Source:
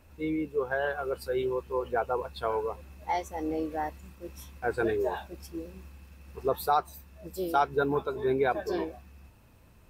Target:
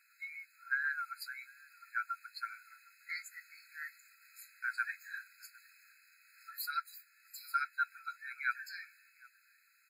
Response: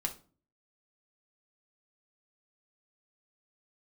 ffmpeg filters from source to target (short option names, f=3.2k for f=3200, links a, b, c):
-filter_complex "[0:a]asplit=2[a][b];[b]adelay=758,volume=-23dB,highshelf=f=4k:g=-17.1[c];[a][c]amix=inputs=2:normalize=0,afftfilt=real='re*eq(mod(floor(b*sr/1024/1300),2),1)':imag='im*eq(mod(floor(b*sr/1024/1300),2),1)':win_size=1024:overlap=0.75,volume=1dB"